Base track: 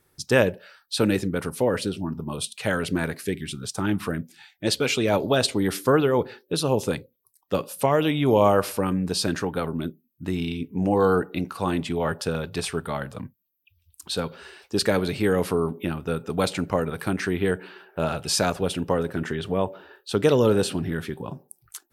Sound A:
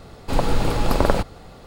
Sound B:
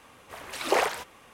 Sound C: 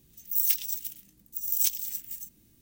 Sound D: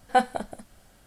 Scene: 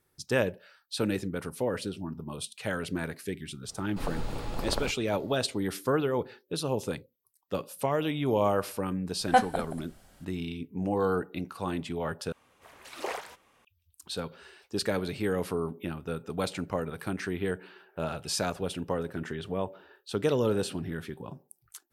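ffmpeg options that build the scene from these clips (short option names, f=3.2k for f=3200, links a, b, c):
-filter_complex "[0:a]volume=-7.5dB,asplit=2[a][b];[a]atrim=end=12.324[c];[2:a]atrim=end=1.33,asetpts=PTS-STARTPTS,volume=-11dB[d];[b]atrim=start=13.646[e];[1:a]atrim=end=1.66,asetpts=PTS-STARTPTS,volume=-14.5dB,afade=t=in:d=0.004:c=hsin,afade=t=out:st=1.656:d=0.004:c=hsin,adelay=3680[f];[4:a]atrim=end=1.06,asetpts=PTS-STARTPTS,volume=-1dB,afade=t=in:d=0.004:c=hsin,afade=t=out:st=1.056:d=0.004:c=hsin,adelay=9190[g];[c][d]acrossfade=d=0.004:c1=hsin:c2=hsin[h];[h][e]acrossfade=d=0.004:c1=hsin:c2=hsin[i];[i][f][g]amix=inputs=3:normalize=0"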